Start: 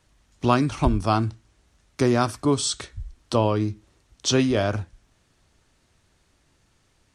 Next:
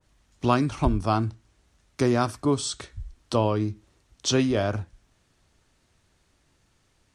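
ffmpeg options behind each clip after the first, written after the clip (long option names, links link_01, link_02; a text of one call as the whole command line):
ffmpeg -i in.wav -af "adynamicequalizer=threshold=0.0141:dfrequency=1600:dqfactor=0.7:tfrequency=1600:tqfactor=0.7:attack=5:release=100:ratio=0.375:range=2:mode=cutabove:tftype=highshelf,volume=-2dB" out.wav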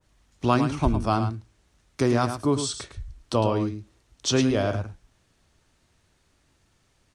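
ffmpeg -i in.wav -af "aecho=1:1:107:0.355" out.wav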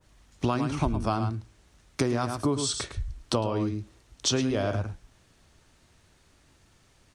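ffmpeg -i in.wav -af "acompressor=threshold=-27dB:ratio=8,volume=4.5dB" out.wav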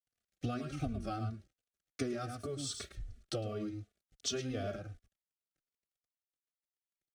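ffmpeg -i in.wav -filter_complex "[0:a]aeval=exprs='sgn(val(0))*max(abs(val(0))-0.00251,0)':channel_layout=same,asuperstop=centerf=960:order=8:qfactor=2.6,asplit=2[link_01][link_02];[link_02]adelay=3.3,afreqshift=-2.7[link_03];[link_01][link_03]amix=inputs=2:normalize=1,volume=-7.5dB" out.wav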